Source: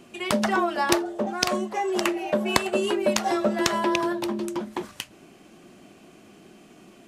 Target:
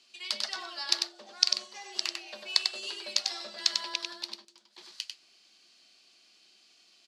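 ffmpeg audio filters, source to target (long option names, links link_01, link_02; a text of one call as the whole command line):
ffmpeg -i in.wav -filter_complex "[0:a]asettb=1/sr,asplit=3[link_01][link_02][link_03];[link_01]atrim=end=4.354[link_04];[link_02]atrim=start=4.35:end=4.78,asetpts=PTS-STARTPTS,afade=type=in:duration=0.004:curve=qsin,afade=type=out:start_time=0.426:duration=0.004:curve=qsin,acompressor=threshold=-40dB:ratio=16[link_05];[link_03]atrim=start=4.776[link_06];[link_04][link_05]acrossfade=duration=0.004:curve1=hsin:curve2=qsin[link_07];[link_07][link_06]acrossfade=duration=0.004:curve1=qsin:curve2=hsin,bandpass=frequency=4500:width_type=q:width=4.8:csg=0,aecho=1:1:96:0.596,volume=7dB" out.wav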